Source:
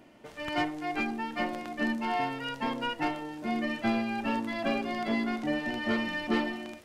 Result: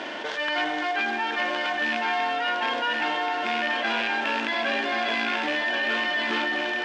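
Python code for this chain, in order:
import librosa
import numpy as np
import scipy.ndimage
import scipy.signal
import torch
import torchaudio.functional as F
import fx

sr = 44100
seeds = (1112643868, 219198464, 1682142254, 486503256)

p1 = fx.rattle_buzz(x, sr, strikes_db=-34.0, level_db=-24.0)
p2 = fx.peak_eq(p1, sr, hz=1200.0, db=-7.5, octaves=0.29)
p3 = np.clip(p2, -10.0 ** (-27.5 / 20.0), 10.0 ** (-27.5 / 20.0))
p4 = p2 + F.gain(torch.from_numpy(p3), -5.5).numpy()
p5 = fx.quant_float(p4, sr, bits=2)
p6 = fx.cabinet(p5, sr, low_hz=460.0, low_slope=12, high_hz=5800.0, hz=(1100.0, 1600.0, 3400.0), db=(6, 10, 8))
p7 = p6 + fx.echo_single(p6, sr, ms=1079, db=-6.5, dry=0)
p8 = fx.rev_spring(p7, sr, rt60_s=3.3, pass_ms=(39, 60), chirp_ms=55, drr_db=9.5)
p9 = fx.env_flatten(p8, sr, amount_pct=70)
y = F.gain(torch.from_numpy(p9), -2.0).numpy()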